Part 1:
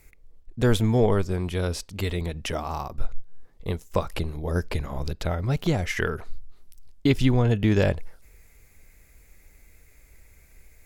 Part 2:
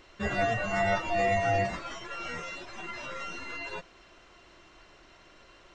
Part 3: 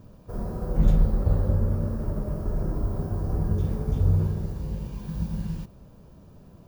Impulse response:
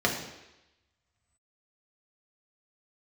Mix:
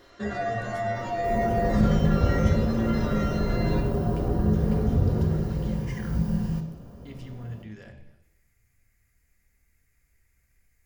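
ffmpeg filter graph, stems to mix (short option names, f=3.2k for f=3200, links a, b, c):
-filter_complex "[0:a]alimiter=limit=-18.5dB:level=0:latency=1:release=244,equalizer=f=470:t=o:w=1.7:g=-12,volume=-15.5dB,asplit=2[a][b];[b]volume=-10.5dB[c];[1:a]alimiter=level_in=2.5dB:limit=-24dB:level=0:latency=1:release=118,volume=-2.5dB,volume=-4dB,asplit=2[d][e];[e]volume=-7.5dB[f];[2:a]adelay=950,volume=-0.5dB,asplit=2[g][h];[h]volume=-10.5dB[i];[a][g]amix=inputs=2:normalize=0,asuperstop=centerf=3600:order=12:qfactor=3.9,alimiter=limit=-19.5dB:level=0:latency=1,volume=0dB[j];[3:a]atrim=start_sample=2205[k];[c][f][i]amix=inputs=3:normalize=0[l];[l][k]afir=irnorm=-1:irlink=0[m];[d][j][m]amix=inputs=3:normalize=0"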